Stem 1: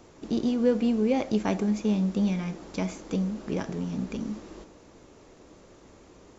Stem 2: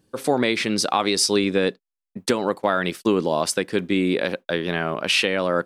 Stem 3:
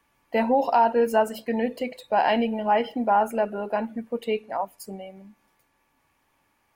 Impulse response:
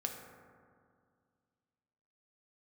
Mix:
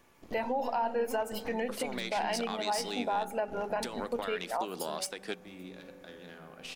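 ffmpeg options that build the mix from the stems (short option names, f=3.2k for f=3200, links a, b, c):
-filter_complex "[0:a]aeval=exprs='max(val(0),0)':c=same,volume=-13.5dB,asplit=2[a][b];[b]volume=-4dB[c];[1:a]acrossover=split=150|3000[d][e][f];[e]acompressor=threshold=-23dB:ratio=6[g];[d][g][f]amix=inputs=3:normalize=0,aeval=exprs='(tanh(3.98*val(0)+0.7)-tanh(0.7))/3.98':c=same,adelay=1550,volume=0.5dB,asplit=2[h][i];[i]volume=-20.5dB[j];[2:a]volume=2.5dB,asplit=3[k][l][m];[l]volume=-21.5dB[n];[m]apad=whole_len=317956[o];[h][o]sidechaingate=range=-33dB:threshold=-47dB:ratio=16:detection=peak[p];[p][k]amix=inputs=2:normalize=0,highpass=f=570:p=1,alimiter=limit=-15dB:level=0:latency=1:release=287,volume=0dB[q];[3:a]atrim=start_sample=2205[r];[c][j][n]amix=inputs=3:normalize=0[s];[s][r]afir=irnorm=-1:irlink=0[t];[a][q][t]amix=inputs=3:normalize=0,alimiter=limit=-22.5dB:level=0:latency=1:release=297"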